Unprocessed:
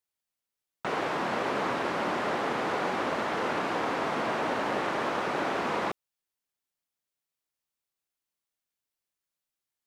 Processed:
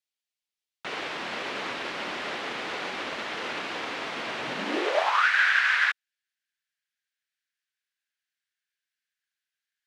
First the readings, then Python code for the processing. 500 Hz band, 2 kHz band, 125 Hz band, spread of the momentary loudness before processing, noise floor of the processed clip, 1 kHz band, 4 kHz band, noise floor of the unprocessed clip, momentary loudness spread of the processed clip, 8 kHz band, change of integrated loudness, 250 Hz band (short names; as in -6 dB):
-3.5 dB, +8.5 dB, -8.5 dB, 2 LU, under -85 dBFS, -1.5 dB, +6.5 dB, under -85 dBFS, 12 LU, +2.0 dB, +3.0 dB, -5.0 dB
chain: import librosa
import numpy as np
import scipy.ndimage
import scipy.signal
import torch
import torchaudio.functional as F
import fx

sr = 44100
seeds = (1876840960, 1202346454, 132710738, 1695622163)

y = fx.weighting(x, sr, curve='D')
y = fx.filter_sweep_highpass(y, sr, from_hz=60.0, to_hz=1600.0, start_s=4.25, end_s=5.28, q=7.1)
y = fx.upward_expand(y, sr, threshold_db=-33.0, expansion=1.5)
y = y * 10.0 ** (-1.5 / 20.0)